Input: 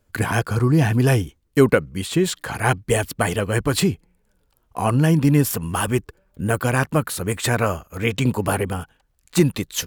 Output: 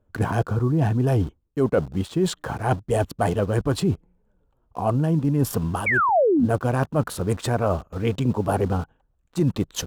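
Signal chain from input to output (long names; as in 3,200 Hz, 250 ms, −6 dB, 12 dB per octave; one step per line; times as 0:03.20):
adaptive Wiener filter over 9 samples
in parallel at −4 dB: bit reduction 6 bits
on the sum: parametric band 2,100 Hz −10.5 dB 1 octave
sound drawn into the spectrogram fall, 0:05.86–0:06.46, 210–2,400 Hz −8 dBFS
dynamic equaliser 690 Hz, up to +7 dB, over −24 dBFS, Q 2.6
reversed playback
downward compressor 6 to 1, threshold −18 dBFS, peak gain reduction 15.5 dB
reversed playback
low-pass filter 3,700 Hz 6 dB per octave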